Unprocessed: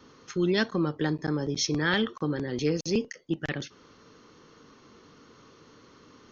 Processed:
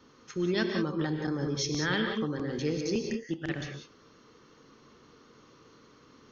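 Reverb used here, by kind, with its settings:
reverb whose tail is shaped and stops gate 210 ms rising, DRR 3 dB
level −4.5 dB

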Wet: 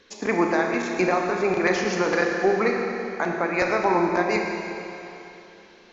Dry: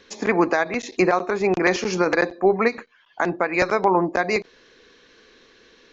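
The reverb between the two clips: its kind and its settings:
four-comb reverb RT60 3.1 s, combs from 26 ms, DRR 1 dB
level −4 dB

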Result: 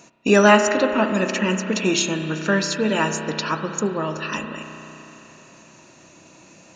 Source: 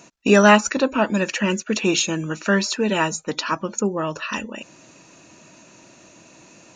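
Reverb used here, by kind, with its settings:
spring reverb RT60 3.5 s, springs 32 ms, chirp 65 ms, DRR 6 dB
level −1 dB

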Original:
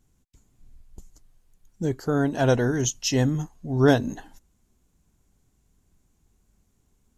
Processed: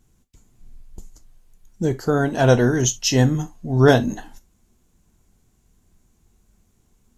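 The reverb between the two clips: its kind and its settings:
reverb whose tail is shaped and stops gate 90 ms falling, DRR 9.5 dB
level +5 dB

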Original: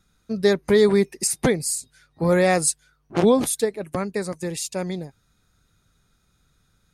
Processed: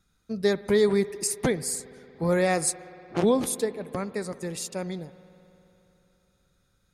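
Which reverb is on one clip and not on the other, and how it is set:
spring reverb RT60 3.4 s, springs 58 ms, chirp 50 ms, DRR 15.5 dB
level −5 dB

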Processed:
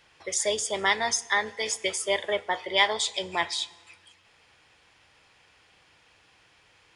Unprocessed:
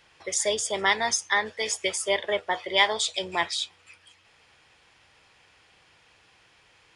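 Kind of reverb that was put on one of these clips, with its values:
feedback delay network reverb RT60 1.4 s, low-frequency decay 1.45×, high-frequency decay 0.8×, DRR 18.5 dB
level −1 dB

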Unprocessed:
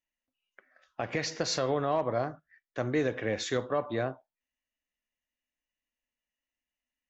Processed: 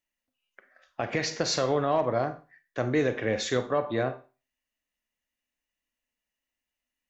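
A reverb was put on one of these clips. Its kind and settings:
four-comb reverb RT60 0.34 s, combs from 32 ms, DRR 11 dB
level +3 dB

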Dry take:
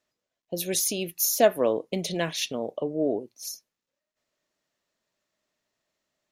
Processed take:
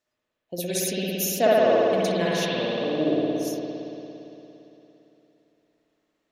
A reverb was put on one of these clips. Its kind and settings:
spring reverb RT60 3.3 s, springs 57 ms, chirp 50 ms, DRR −7 dB
level −3 dB

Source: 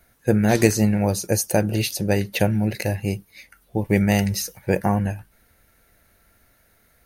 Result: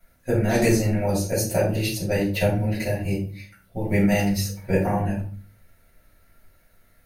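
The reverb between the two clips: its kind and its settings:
rectangular room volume 310 cubic metres, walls furnished, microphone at 6.8 metres
level −12.5 dB

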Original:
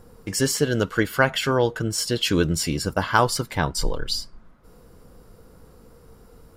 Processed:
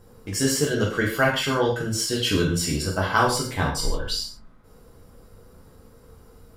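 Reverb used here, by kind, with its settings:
reverb whose tail is shaped and stops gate 180 ms falling, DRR −3 dB
level −5 dB

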